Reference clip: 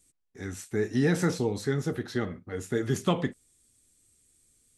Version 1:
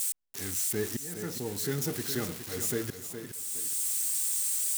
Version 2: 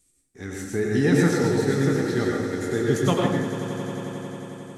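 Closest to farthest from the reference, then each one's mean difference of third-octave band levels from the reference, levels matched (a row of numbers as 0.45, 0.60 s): 2, 1; 7.5, 12.0 dB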